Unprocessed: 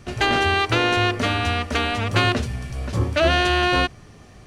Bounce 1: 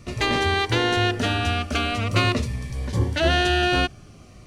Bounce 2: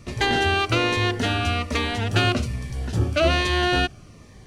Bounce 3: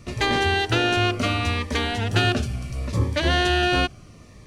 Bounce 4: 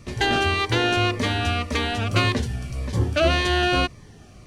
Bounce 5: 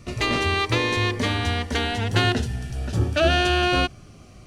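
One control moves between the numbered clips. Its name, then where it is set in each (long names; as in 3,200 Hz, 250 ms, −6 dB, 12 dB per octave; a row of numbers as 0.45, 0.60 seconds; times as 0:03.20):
phaser whose notches keep moving one way, speed: 0.44, 1.2, 0.71, 1.8, 0.2 Hertz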